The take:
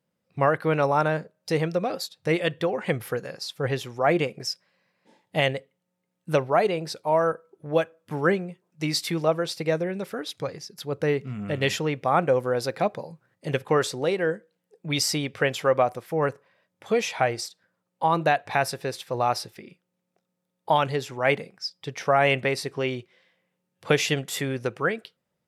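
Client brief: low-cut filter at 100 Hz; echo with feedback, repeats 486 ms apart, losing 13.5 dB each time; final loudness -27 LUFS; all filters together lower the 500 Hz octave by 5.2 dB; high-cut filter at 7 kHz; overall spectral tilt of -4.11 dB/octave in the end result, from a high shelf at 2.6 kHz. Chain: high-pass 100 Hz; low-pass 7 kHz; peaking EQ 500 Hz -6.5 dB; treble shelf 2.6 kHz +3 dB; feedback delay 486 ms, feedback 21%, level -13.5 dB; trim +1 dB

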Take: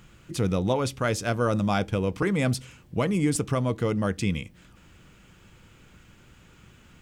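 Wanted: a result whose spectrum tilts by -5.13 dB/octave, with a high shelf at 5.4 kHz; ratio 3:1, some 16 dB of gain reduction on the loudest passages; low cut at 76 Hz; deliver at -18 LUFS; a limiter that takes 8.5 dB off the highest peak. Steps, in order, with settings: high-pass 76 Hz; treble shelf 5.4 kHz +6 dB; compression 3:1, threshold -43 dBFS; trim +27.5 dB; peak limiter -6.5 dBFS

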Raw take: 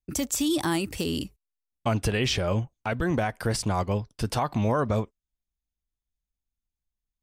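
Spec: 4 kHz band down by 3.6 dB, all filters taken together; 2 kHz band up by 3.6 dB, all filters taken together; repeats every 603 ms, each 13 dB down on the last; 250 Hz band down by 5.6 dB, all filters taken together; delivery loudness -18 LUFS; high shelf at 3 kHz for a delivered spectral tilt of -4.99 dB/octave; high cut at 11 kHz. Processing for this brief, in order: low-pass 11 kHz; peaking EQ 250 Hz -8 dB; peaking EQ 2 kHz +8 dB; treble shelf 3 kHz -5.5 dB; peaking EQ 4 kHz -4 dB; feedback delay 603 ms, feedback 22%, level -13 dB; trim +11.5 dB

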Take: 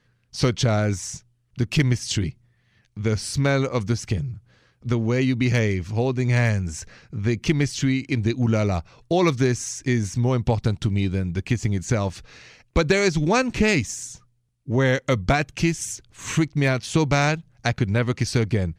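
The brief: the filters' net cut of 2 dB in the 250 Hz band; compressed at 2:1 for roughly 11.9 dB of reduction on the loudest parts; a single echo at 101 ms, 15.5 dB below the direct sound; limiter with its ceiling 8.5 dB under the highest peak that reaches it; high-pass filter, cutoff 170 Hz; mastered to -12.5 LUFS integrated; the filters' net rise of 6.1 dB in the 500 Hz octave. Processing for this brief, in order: high-pass 170 Hz; peaking EQ 250 Hz -4.5 dB; peaking EQ 500 Hz +9 dB; compression 2:1, threshold -34 dBFS; peak limiter -22.5 dBFS; delay 101 ms -15.5 dB; trim +21 dB

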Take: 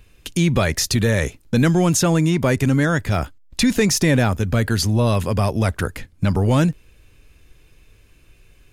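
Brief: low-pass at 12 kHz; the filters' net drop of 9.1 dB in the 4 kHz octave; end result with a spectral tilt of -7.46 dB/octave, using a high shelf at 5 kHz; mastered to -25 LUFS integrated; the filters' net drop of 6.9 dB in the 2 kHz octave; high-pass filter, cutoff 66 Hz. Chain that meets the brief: high-pass 66 Hz; low-pass 12 kHz; peaking EQ 2 kHz -6.5 dB; peaking EQ 4 kHz -9 dB; treble shelf 5 kHz -3 dB; trim -5 dB

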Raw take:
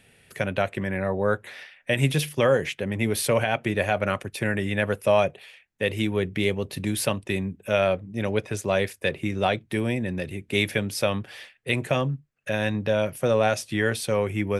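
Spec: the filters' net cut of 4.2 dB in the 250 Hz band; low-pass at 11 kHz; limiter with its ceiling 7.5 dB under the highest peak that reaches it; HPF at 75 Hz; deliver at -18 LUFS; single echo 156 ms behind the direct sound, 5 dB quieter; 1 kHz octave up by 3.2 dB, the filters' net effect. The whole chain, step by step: high-pass 75 Hz; low-pass 11 kHz; peaking EQ 250 Hz -6 dB; peaking EQ 1 kHz +5 dB; peak limiter -14.5 dBFS; delay 156 ms -5 dB; trim +9 dB

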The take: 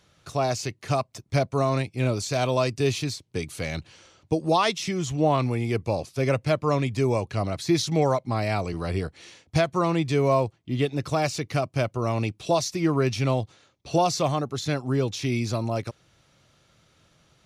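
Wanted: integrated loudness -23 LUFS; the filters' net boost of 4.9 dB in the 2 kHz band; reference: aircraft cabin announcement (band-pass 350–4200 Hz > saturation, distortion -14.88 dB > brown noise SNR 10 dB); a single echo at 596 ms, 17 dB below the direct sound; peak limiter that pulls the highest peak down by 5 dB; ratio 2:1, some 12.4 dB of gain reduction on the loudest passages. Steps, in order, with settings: peaking EQ 2 kHz +6.5 dB; compression 2:1, threshold -40 dBFS; peak limiter -26 dBFS; band-pass 350–4200 Hz; delay 596 ms -17 dB; saturation -33 dBFS; brown noise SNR 10 dB; trim +19 dB

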